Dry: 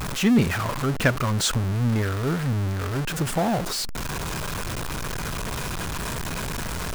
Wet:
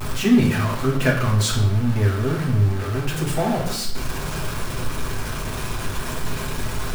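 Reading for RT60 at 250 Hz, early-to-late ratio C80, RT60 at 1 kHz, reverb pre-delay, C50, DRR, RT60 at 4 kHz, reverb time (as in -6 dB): 0.95 s, 9.5 dB, 0.70 s, 5 ms, 6.5 dB, -4.0 dB, 0.65 s, 0.70 s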